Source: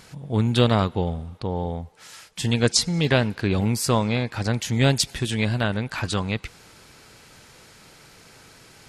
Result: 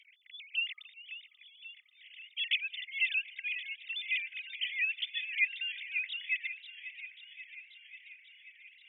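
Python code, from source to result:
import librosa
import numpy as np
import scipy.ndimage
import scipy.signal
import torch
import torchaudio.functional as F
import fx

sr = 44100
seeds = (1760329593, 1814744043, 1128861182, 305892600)

y = fx.sine_speech(x, sr)
y = scipy.signal.sosfilt(scipy.signal.cheby1(6, 3, 2000.0, 'highpass', fs=sr, output='sos'), y)
y = fx.echo_warbled(y, sr, ms=538, feedback_pct=68, rate_hz=2.8, cents=88, wet_db=-13)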